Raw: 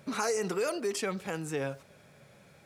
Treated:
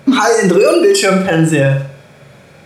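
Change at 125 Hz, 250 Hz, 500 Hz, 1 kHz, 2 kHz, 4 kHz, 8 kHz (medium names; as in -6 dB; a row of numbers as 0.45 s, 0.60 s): +26.5 dB, +24.5 dB, +21.0 dB, +20.0 dB, +21.0 dB, +21.0 dB, +17.5 dB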